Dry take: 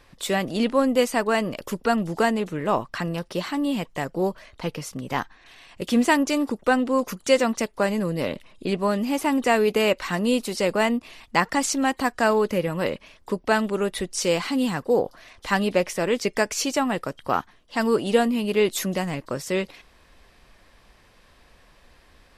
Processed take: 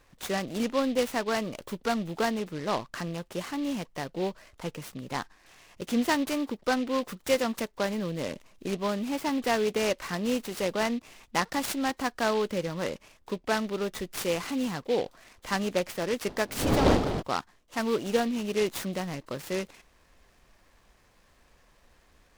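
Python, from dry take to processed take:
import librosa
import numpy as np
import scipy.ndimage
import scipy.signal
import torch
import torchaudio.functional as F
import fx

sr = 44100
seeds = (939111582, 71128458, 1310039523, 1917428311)

y = fx.dmg_wind(x, sr, seeds[0], corner_hz=500.0, level_db=-22.0, at=(16.27, 17.21), fade=0.02)
y = fx.noise_mod_delay(y, sr, seeds[1], noise_hz=2900.0, depth_ms=0.047)
y = y * 10.0 ** (-6.5 / 20.0)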